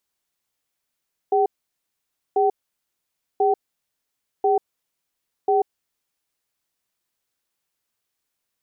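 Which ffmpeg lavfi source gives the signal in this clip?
-f lavfi -i "aevalsrc='0.126*(sin(2*PI*407*t)+sin(2*PI*765*t))*clip(min(mod(t,1.04),0.14-mod(t,1.04))/0.005,0,1)':d=4.62:s=44100"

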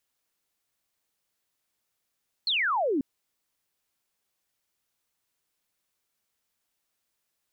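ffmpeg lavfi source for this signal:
-f lavfi -i "aevalsrc='0.0708*clip(t/0.002,0,1)*clip((0.54-t)/0.002,0,1)*sin(2*PI*4400*0.54/log(250/4400)*(exp(log(250/4400)*t/0.54)-1))':d=0.54:s=44100"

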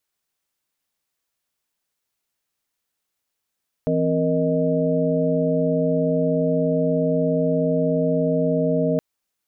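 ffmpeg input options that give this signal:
-f lavfi -i "aevalsrc='0.0708*(sin(2*PI*164.81*t)+sin(2*PI*261.63*t)+sin(2*PI*466.16*t)+sin(2*PI*622.25*t))':d=5.12:s=44100"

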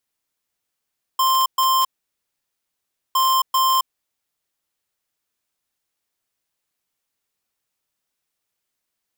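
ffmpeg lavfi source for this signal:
-f lavfi -i "aevalsrc='0.141*(2*lt(mod(1050*t,1),0.5)-1)*clip(min(mod(mod(t,1.96),0.39),0.27-mod(mod(t,1.96),0.39))/0.005,0,1)*lt(mod(t,1.96),0.78)':d=3.92:s=44100"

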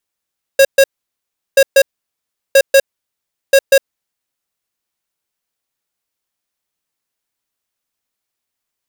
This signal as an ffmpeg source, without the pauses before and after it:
-f lavfi -i "aevalsrc='0.473*(2*lt(mod(545*t,1),0.5)-1)*clip(min(mod(mod(t,0.98),0.19),0.06-mod(mod(t,0.98),0.19))/0.005,0,1)*lt(mod(t,0.98),0.38)':d=3.92:s=44100"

